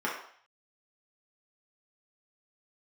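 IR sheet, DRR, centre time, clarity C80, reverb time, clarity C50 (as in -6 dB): -5.5 dB, 38 ms, 8.0 dB, 0.55 s, 4.5 dB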